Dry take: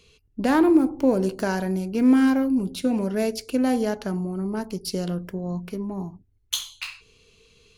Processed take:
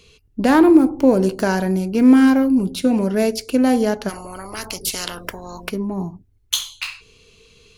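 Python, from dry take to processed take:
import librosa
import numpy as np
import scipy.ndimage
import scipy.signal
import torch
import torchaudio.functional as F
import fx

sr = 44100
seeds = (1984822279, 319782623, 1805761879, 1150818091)

y = fx.spectral_comp(x, sr, ratio=10.0, at=(4.08, 5.69), fade=0.02)
y = F.gain(torch.from_numpy(y), 6.0).numpy()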